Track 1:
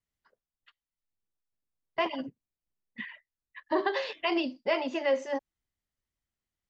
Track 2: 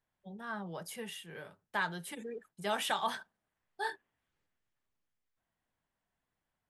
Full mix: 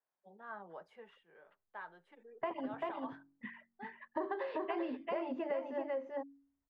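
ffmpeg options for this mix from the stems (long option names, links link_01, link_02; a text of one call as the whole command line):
ffmpeg -i stem1.wav -i stem2.wav -filter_complex "[0:a]bandreject=frequency=46.44:width_type=h:width=4,bandreject=frequency=92.88:width_type=h:width=4,bandreject=frequency=139.32:width_type=h:width=4,bandreject=frequency=185.76:width_type=h:width=4,bandreject=frequency=232.2:width_type=h:width=4,bandreject=frequency=278.64:width_type=h:width=4,bandreject=frequency=325.08:width_type=h:width=4,bandreject=frequency=371.52:width_type=h:width=4,adelay=450,volume=-2.5dB,asplit=2[link_01][link_02];[link_02]volume=-4dB[link_03];[1:a]highpass=430,volume=-3.5dB,afade=type=out:start_time=0.74:duration=0.48:silence=0.421697[link_04];[link_03]aecho=0:1:390:1[link_05];[link_01][link_04][link_05]amix=inputs=3:normalize=0,lowpass=1400,acompressor=threshold=-34dB:ratio=6" out.wav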